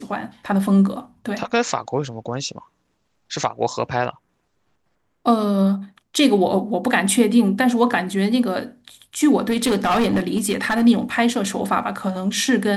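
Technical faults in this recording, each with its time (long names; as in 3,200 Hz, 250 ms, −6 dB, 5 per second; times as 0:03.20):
0:09.50–0:10.86: clipping −14 dBFS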